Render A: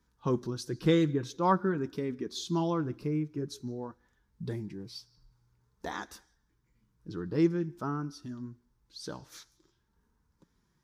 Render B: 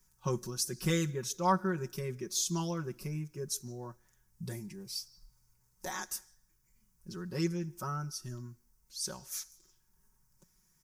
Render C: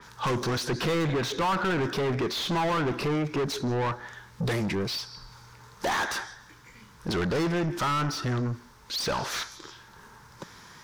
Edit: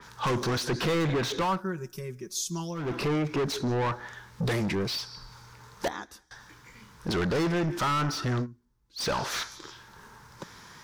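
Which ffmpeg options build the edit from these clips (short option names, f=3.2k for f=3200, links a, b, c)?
-filter_complex "[0:a]asplit=2[a][b];[2:a]asplit=4[c][d][e][f];[c]atrim=end=1.63[g];[1:a]atrim=start=1.39:end=2.98[h];[d]atrim=start=2.74:end=5.882[i];[a]atrim=start=5.878:end=6.312[j];[e]atrim=start=6.308:end=8.47[k];[b]atrim=start=8.41:end=9.02[l];[f]atrim=start=8.96[m];[g][h]acrossfade=d=0.24:c1=tri:c2=tri[n];[n][i]acrossfade=d=0.24:c1=tri:c2=tri[o];[o][j]acrossfade=d=0.004:c1=hsin:c2=hsin[p];[p][k]acrossfade=d=0.004:c1=hsin:c2=hsin[q];[q][l]acrossfade=d=0.06:c1=tri:c2=tri[r];[r][m]acrossfade=d=0.06:c1=tri:c2=tri"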